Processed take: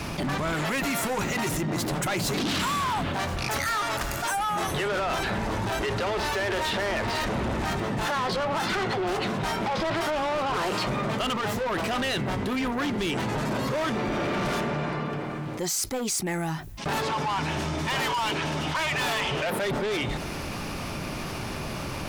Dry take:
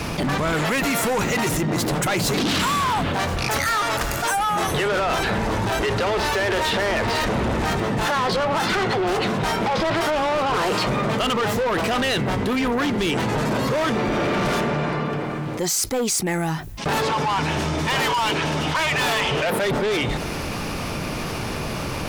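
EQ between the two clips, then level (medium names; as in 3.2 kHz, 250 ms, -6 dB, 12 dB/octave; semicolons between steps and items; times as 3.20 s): band-stop 470 Hz, Q 12; -5.5 dB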